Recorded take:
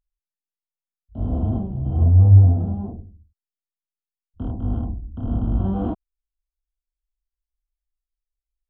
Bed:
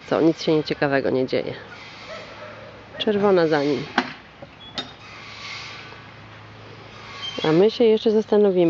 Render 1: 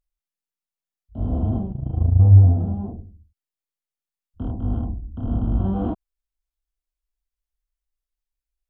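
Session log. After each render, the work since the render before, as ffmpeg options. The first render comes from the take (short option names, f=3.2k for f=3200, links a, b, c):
-filter_complex "[0:a]asettb=1/sr,asplit=3[a][b][c];[a]atrim=end=1.724[d];[b]atrim=start=1.72:end=2.2,asetpts=PTS-STARTPTS,afade=t=in:d=0.004:c=qsin,afade=t=out:st=0.476:d=0.004:c=qsin,tremolo=f=27:d=0.824[e];[c]atrim=start=2.196[f];[d][e]acrossfade=d=0.004:c1=hsin:c2=qsin[g];[g][f]acrossfade=d=0.004:c1=qsin:c2=hsin"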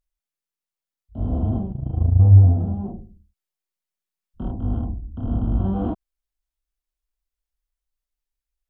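-filter_complex "[0:a]asettb=1/sr,asplit=3[a][b][c];[a]atrim=end=2.854[d];[b]atrim=start=2.85:end=4.53,asetpts=PTS-STARTPTS,afade=t=in:d=0.004:c=qsin,afade=t=out:st=1.676:d=0.004:c=qsin,aecho=1:1:5.4:0.65,atrim=end_sample=74088[e];[c]atrim=start=4.526[f];[d][e]acrossfade=d=0.004:c1=hsin:c2=qsin[g];[g][f]acrossfade=d=0.004:c1=qsin:c2=hsin"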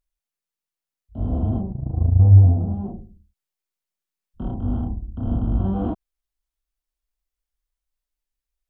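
-filter_complex "[0:a]asettb=1/sr,asplit=3[a][b][c];[a]atrim=end=1.614[d];[b]atrim=start=1.61:end=2.71,asetpts=PTS-STARTPTS,afade=t=in:d=0.004:c=qsin,afade=t=out:st=1.096:d=0.004:c=qsin,lowpass=f=1.2k:w=0.5412,lowpass=f=1.2k:w=1.3066[e];[c]atrim=start=2.706[f];[d][e]acrossfade=d=0.004:c1=hsin:c2=qsin[g];[g][f]acrossfade=d=0.004:c1=qsin:c2=hsin,asettb=1/sr,asplit=3[h][i][j];[h]atrim=end=4.464[k];[i]atrim=start=4.46:end=5.36,asetpts=PTS-STARTPTS,afade=t=in:d=0.004:c=qsin,afade=t=out:st=0.896:d=0.004:c=qsin,asplit=2[l][m];[m]adelay=33,volume=-5dB[n];[l][n]amix=inputs=2:normalize=0,atrim=end_sample=39690[o];[j]atrim=start=5.356[p];[k][o]acrossfade=d=0.004:c1=hsin:c2=qsin[q];[q][p]acrossfade=d=0.004:c1=qsin:c2=hsin"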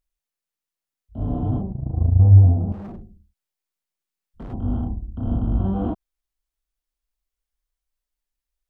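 -filter_complex "[0:a]asettb=1/sr,asplit=3[a][b][c];[a]atrim=end=1.204[d];[b]atrim=start=1.2:end=1.62,asetpts=PTS-STARTPTS,afade=t=in:d=0.004:c=qsin,afade=t=out:st=0.416:d=0.004:c=qsin,aecho=1:1:6.9:0.68,atrim=end_sample=18522[e];[c]atrim=start=1.616[f];[d][e]acrossfade=d=0.004:c1=hsin:c2=qsin[g];[g][f]acrossfade=d=0.004:c1=qsin:c2=hsin,asettb=1/sr,asplit=3[h][i][j];[h]atrim=end=2.724[k];[i]atrim=start=2.72:end=4.53,asetpts=PTS-STARTPTS,afade=t=in:d=0.004:c=qsin,afade=t=out:st=1.806:d=0.004:c=qsin,asoftclip=type=hard:threshold=-32.5dB[l];[j]atrim=start=4.526[m];[k][l]acrossfade=d=0.004:c1=hsin:c2=qsin[n];[n][m]acrossfade=d=0.004:c1=qsin:c2=hsin"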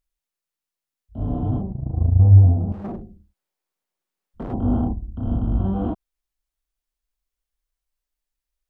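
-filter_complex "[0:a]asettb=1/sr,asplit=3[a][b][c];[a]atrim=end=2.844[d];[b]atrim=start=2.84:end=4.93,asetpts=PTS-STARTPTS,afade=t=in:d=0.004:c=qsin,afade=t=out:st=2.086:d=0.004:c=qsin,equalizer=f=520:w=0.35:g=8.5[e];[c]atrim=start=4.926[f];[d][e]acrossfade=d=0.004:c1=hsin:c2=qsin[g];[g][f]acrossfade=d=0.004:c1=qsin:c2=hsin"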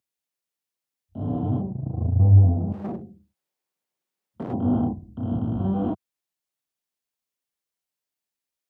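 -af "highpass=f=100:w=0.5412,highpass=f=100:w=1.3066,equalizer=f=1.3k:t=o:w=0.77:g=-2.5"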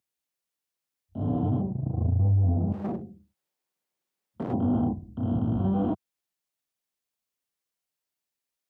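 -af "alimiter=limit=-17dB:level=0:latency=1:release=54"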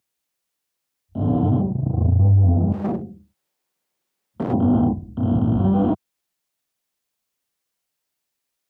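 -af "volume=7.5dB"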